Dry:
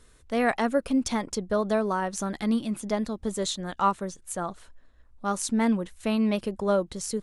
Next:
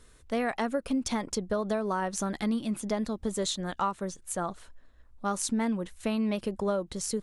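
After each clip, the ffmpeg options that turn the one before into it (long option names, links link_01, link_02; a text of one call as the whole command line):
ffmpeg -i in.wav -af "acompressor=threshold=-25dB:ratio=6" out.wav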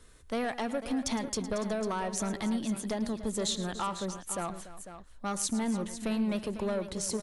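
ffmpeg -i in.wav -filter_complex "[0:a]acrossover=split=140|3200[link_01][link_02][link_03];[link_02]asoftclip=type=tanh:threshold=-27dB[link_04];[link_01][link_04][link_03]amix=inputs=3:normalize=0,aecho=1:1:110|288|498:0.178|0.168|0.251" out.wav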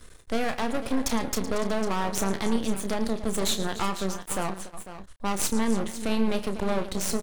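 ffmpeg -i in.wav -filter_complex "[0:a]aeval=exprs='max(val(0),0)':channel_layout=same,asplit=2[link_01][link_02];[link_02]adelay=31,volume=-10dB[link_03];[link_01][link_03]amix=inputs=2:normalize=0,volume=8.5dB" out.wav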